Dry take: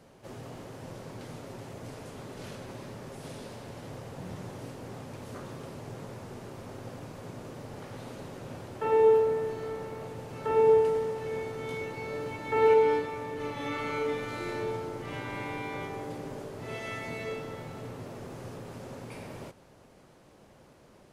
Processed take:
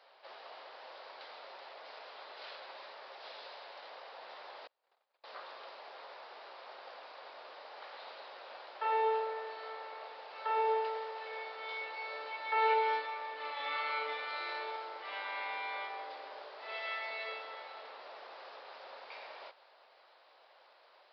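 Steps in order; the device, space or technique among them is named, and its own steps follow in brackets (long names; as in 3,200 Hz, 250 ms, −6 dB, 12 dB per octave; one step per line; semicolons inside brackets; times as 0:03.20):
0:04.67–0:05.24: noise gate −37 dBFS, range −36 dB
musical greeting card (downsampling to 11,025 Hz; high-pass filter 650 Hz 24 dB per octave; parametric band 3,900 Hz +4.5 dB 0.36 octaves)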